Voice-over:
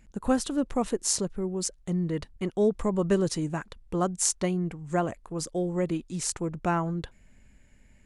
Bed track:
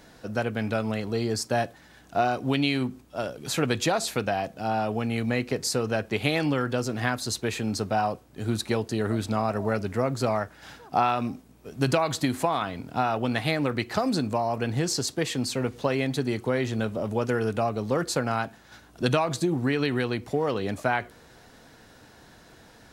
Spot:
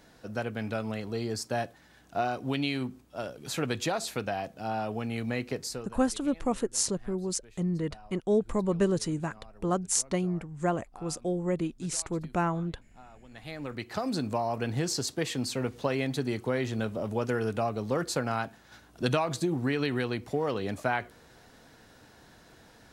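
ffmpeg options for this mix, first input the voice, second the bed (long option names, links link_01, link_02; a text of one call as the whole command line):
ffmpeg -i stem1.wav -i stem2.wav -filter_complex "[0:a]adelay=5700,volume=-1.5dB[link_01];[1:a]volume=18.5dB,afade=type=out:start_time=5.55:duration=0.42:silence=0.0794328,afade=type=in:start_time=13.28:duration=1.05:silence=0.0630957[link_02];[link_01][link_02]amix=inputs=2:normalize=0" out.wav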